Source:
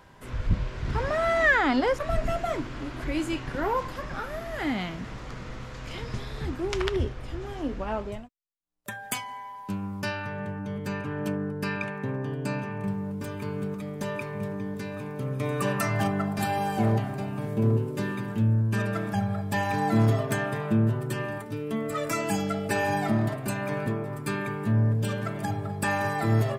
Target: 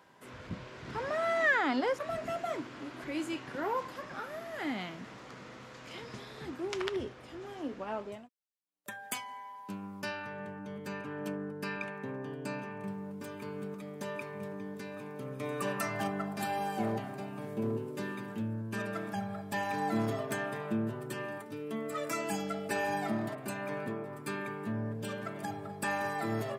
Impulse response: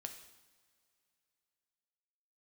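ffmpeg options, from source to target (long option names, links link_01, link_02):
-filter_complex "[0:a]highpass=200,asettb=1/sr,asplit=3[link_01][link_02][link_03];[link_01]atrim=end=23.354[link_04];[link_02]atrim=start=23.35:end=25.36,asetpts=PTS-STARTPTS,afade=type=in:duration=0.004:curve=qsin,afade=type=out:start_time=2.006:duration=0.004:curve=qsin,adynamicequalizer=threshold=0.00355:dfrequency=3600:dqfactor=0.7:tfrequency=3600:tqfactor=0.7:attack=5:release=100:ratio=0.375:range=2:mode=cutabove:tftype=highshelf[link_05];[link_03]atrim=start=25.356[link_06];[link_04][link_05]acrossfade=duration=0.004:curve1=hsin:curve2=qsin[link_07];[link_07][link_06]acrossfade=duration=0.004:curve1=qsin:curve2=hsin,volume=-6dB"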